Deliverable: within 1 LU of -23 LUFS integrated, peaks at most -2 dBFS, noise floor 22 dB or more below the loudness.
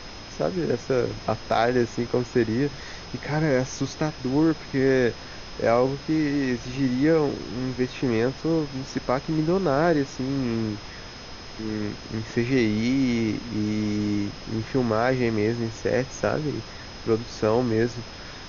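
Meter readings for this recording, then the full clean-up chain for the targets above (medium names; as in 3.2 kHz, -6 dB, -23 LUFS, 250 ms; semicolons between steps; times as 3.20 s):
steady tone 5.1 kHz; tone level -45 dBFS; noise floor -40 dBFS; noise floor target -47 dBFS; loudness -25.0 LUFS; peak level -7.5 dBFS; loudness target -23.0 LUFS
-> band-stop 5.1 kHz, Q 30; noise print and reduce 7 dB; trim +2 dB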